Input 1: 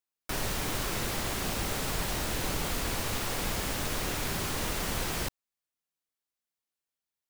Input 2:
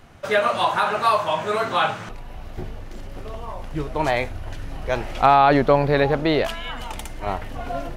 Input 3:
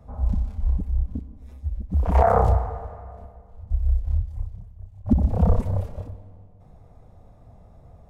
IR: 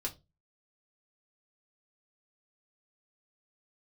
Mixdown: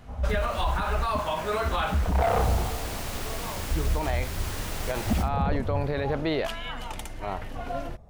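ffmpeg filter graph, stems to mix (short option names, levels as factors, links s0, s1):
-filter_complex "[0:a]acontrast=82,volume=0.316,afade=t=in:st=2.19:d=0.32:silence=0.354813[s0];[1:a]volume=0.631[s1];[2:a]asoftclip=type=tanh:threshold=0.141,volume=0.841[s2];[s0][s1]amix=inputs=2:normalize=0,alimiter=limit=0.119:level=0:latency=1:release=33,volume=1[s3];[s2][s3]amix=inputs=2:normalize=0,alimiter=limit=0.158:level=0:latency=1:release=432"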